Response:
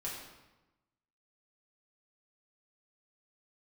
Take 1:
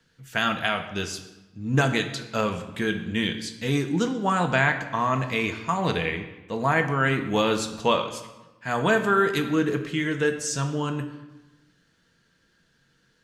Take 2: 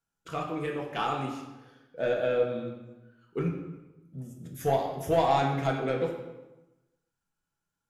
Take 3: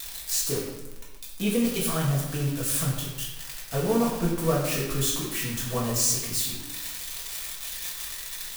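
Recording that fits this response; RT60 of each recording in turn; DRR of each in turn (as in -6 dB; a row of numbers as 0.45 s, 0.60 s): 3; 1.1 s, 1.1 s, 1.1 s; 5.5 dB, -0.5 dB, -6.0 dB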